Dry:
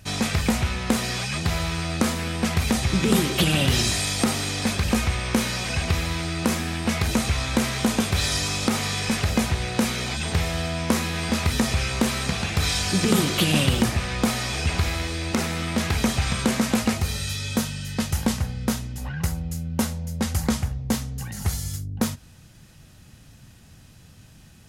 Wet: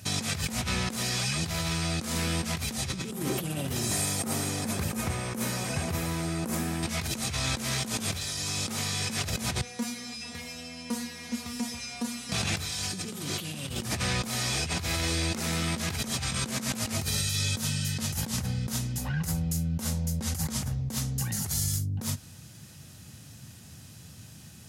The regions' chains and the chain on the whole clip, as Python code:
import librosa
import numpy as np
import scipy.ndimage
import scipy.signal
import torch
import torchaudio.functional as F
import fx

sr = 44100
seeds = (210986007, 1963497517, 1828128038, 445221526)

y = fx.chain(x, sr, fx.highpass(hz=160.0, slope=6),
    fx.peak_eq(hz=4000.0, db=-12.0, octaves=2.4), at=(3.11, 6.83))
y = fx.chain(y, sr, fx.comb_fb(f0_hz=240.0, decay_s=0.26, harmonics='all', damping=0.0, mix_pct=100),
    fx.doppler_dist(depth_ms=0.1), at=(9.61, 12.32))
y = scipy.signal.sosfilt(scipy.signal.butter(4, 80.0, 'highpass', fs=sr, output='sos'), y)
y = fx.bass_treble(y, sr, bass_db=3, treble_db=7)
y = fx.over_compress(y, sr, threshold_db=-27.0, ratio=-1.0)
y = y * 10.0 ** (-4.0 / 20.0)